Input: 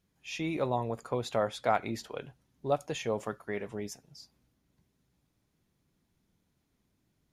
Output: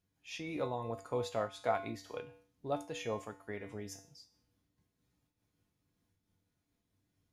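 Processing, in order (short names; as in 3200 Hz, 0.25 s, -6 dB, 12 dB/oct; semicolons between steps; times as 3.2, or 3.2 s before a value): resonator 97 Hz, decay 0.46 s, harmonics odd, mix 80%; noise-modulated level, depth 60%; gain +8 dB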